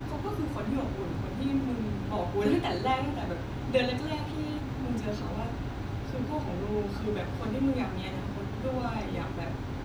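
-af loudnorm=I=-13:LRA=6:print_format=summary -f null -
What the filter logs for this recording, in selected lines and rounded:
Input Integrated:    -32.3 LUFS
Input True Peak:     -13.3 dBTP
Input LRA:             2.8 LU
Input Threshold:     -42.3 LUFS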